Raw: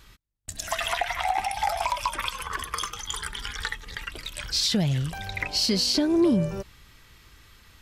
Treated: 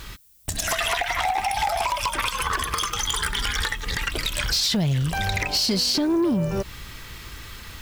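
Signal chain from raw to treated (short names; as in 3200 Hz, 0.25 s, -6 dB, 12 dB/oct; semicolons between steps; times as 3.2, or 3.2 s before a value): compressor 5:1, threshold -33 dBFS, peak gain reduction 14 dB; sine folder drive 10 dB, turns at -17.5 dBFS; added noise violet -56 dBFS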